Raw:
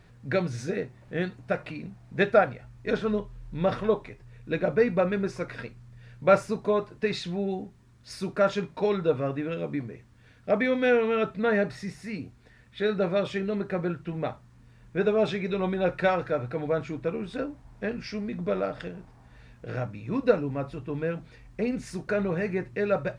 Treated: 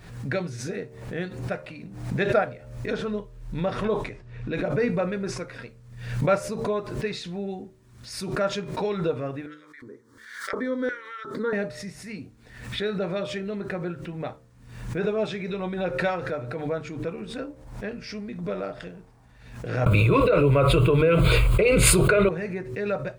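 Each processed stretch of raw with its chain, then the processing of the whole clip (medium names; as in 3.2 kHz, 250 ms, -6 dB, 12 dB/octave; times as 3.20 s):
3.85–5.38 s: level-controlled noise filter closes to 3 kHz, open at -23 dBFS + decay stretcher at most 85 dB/s
9.46–11.53 s: LFO high-pass square 1.4 Hz 210–2000 Hz + treble shelf 6.9 kHz -6.5 dB + static phaser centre 700 Hz, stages 6
19.86–22.29 s: static phaser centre 1.2 kHz, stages 8 + dynamic bell 2.1 kHz, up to +6 dB, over -55 dBFS, Q 2.9 + level flattener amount 100%
whole clip: treble shelf 8.2 kHz +8.5 dB; de-hum 75.56 Hz, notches 9; swell ahead of each attack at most 68 dB/s; trim -2.5 dB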